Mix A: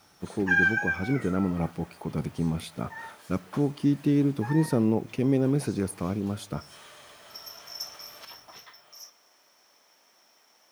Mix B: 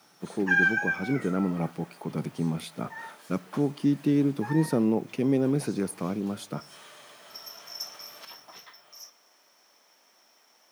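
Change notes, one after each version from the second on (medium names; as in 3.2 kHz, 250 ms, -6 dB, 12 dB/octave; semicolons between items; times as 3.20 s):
master: add high-pass 140 Hz 24 dB/octave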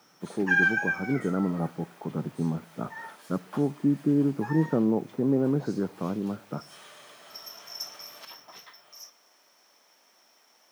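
speech: add steep low-pass 1.6 kHz 48 dB/octave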